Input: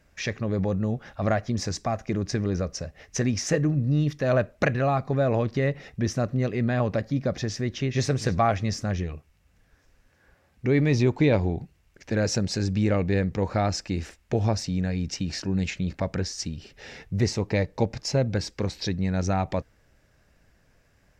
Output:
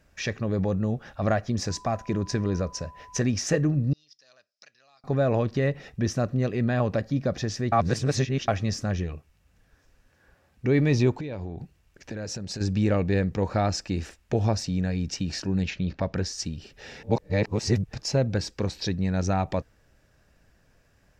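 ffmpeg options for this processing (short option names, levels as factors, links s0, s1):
-filter_complex "[0:a]asettb=1/sr,asplit=3[s0][s1][s2];[s0]atrim=end=1.694[s3];[s1]atrim=start=1.69:end=3.2,asetpts=PTS-STARTPTS,afade=t=in:d=0.004:c=qsin,afade=t=out:st=1.506:d=0.004:c=qsin,aeval=exprs='val(0)+0.00501*sin(2*PI*1000*n/s)':c=same[s4];[s2]atrim=start=3.196[s5];[s3][s4]acrossfade=d=0.004:c1=hsin:c2=qsin[s6];[s6][s5]acrossfade=d=0.004:c1=qsin:c2=hsin,asettb=1/sr,asplit=3[s7][s8][s9];[s7]atrim=end=3.934[s10];[s8]atrim=start=3.93:end=5.04,asetpts=PTS-STARTPTS,afade=t=in:d=0.004:c=qsin,afade=t=out:st=1.106:d=0.004:c=qsin,bandpass=f=5100:t=q:w=10[s11];[s9]atrim=start=5.036[s12];[s10][s11]acrossfade=d=0.004:c1=hsin:c2=qsin[s13];[s13][s12]acrossfade=d=0.004:c1=qsin:c2=hsin,asettb=1/sr,asplit=3[s14][s15][s16];[s14]atrim=end=11.114[s17];[s15]atrim=start=11.11:end=12.61,asetpts=PTS-STARTPTS,afade=t=in:d=0.004:c=qsin,afade=t=out:st=1.496:d=0.004:c=qsin,acompressor=threshold=0.0316:ratio=12:attack=3.2:release=140:knee=1:detection=peak[s18];[s16]atrim=start=12.606[s19];[s17][s18]acrossfade=d=0.004:c1=hsin:c2=qsin[s20];[s20][s19]acrossfade=d=0.004:c1=qsin:c2=hsin,asplit=3[s21][s22][s23];[s21]afade=t=out:st=15.62:d=0.02[s24];[s22]lowpass=f=5600:w=0.5412,lowpass=f=5600:w=1.3066,afade=t=in:st=15.62:d=0.02,afade=t=out:st=16.14:d=0.02[s25];[s23]afade=t=in:st=16.14:d=0.02[s26];[s24][s25][s26]amix=inputs=3:normalize=0,asplit=5[s27][s28][s29][s30][s31];[s27]atrim=end=7.722[s32];[s28]atrim=start=7.718:end=8.482,asetpts=PTS-STARTPTS,areverse[s33];[s29]atrim=start=8.478:end=17.032[s34];[s30]atrim=start=17.028:end=17.932,asetpts=PTS-STARTPTS,areverse[s35];[s31]atrim=start=17.928[s36];[s32][s33]acrossfade=d=0.004:c1=hsin:c2=hsin[s37];[s37][s34]acrossfade=d=0.004:c1=hsin:c2=hsin[s38];[s38][s35]acrossfade=d=0.004:c1=hsin:c2=hsin[s39];[s39][s36]acrossfade=d=0.004:c1=hsin:c2=hsin,bandreject=f=2100:w=14"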